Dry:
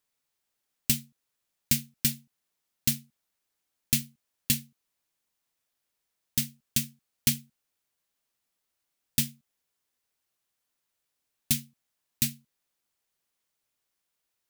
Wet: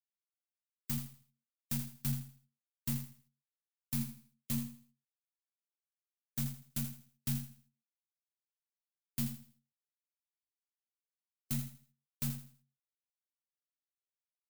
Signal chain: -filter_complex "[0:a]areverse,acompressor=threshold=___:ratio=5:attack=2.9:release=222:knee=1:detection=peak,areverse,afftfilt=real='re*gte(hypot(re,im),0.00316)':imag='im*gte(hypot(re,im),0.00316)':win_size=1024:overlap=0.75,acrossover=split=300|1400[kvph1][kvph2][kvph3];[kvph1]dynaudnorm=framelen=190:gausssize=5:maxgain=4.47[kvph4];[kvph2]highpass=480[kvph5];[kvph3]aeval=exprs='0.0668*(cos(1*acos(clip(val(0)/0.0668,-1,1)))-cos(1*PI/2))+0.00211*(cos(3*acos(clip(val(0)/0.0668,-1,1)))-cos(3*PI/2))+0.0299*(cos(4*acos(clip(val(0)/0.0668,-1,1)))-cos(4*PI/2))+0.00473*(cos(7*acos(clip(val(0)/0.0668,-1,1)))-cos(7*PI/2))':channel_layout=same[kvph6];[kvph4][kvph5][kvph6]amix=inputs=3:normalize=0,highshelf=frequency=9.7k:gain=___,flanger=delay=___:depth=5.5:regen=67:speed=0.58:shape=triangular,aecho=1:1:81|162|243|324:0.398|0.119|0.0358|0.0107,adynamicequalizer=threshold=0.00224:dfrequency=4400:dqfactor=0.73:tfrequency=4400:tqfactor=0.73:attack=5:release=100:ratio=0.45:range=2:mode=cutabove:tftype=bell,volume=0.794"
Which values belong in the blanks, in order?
0.02, 7.5, 4.9